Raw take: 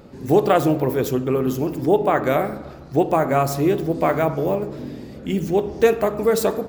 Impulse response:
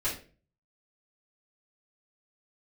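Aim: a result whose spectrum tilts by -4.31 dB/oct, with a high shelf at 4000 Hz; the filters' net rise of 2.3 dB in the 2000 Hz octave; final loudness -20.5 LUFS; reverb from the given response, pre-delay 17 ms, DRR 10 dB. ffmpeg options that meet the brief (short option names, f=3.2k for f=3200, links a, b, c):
-filter_complex "[0:a]equalizer=f=2k:t=o:g=4.5,highshelf=f=4k:g=-7.5,asplit=2[a][b];[1:a]atrim=start_sample=2205,adelay=17[c];[b][c]afir=irnorm=-1:irlink=0,volume=-17dB[d];[a][d]amix=inputs=2:normalize=0,volume=-0.5dB"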